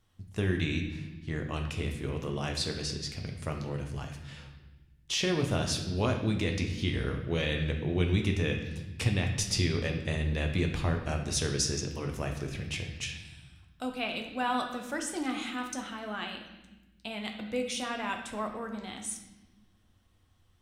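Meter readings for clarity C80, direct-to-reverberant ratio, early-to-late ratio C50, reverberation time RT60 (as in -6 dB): 8.5 dB, 2.5 dB, 6.5 dB, 1.1 s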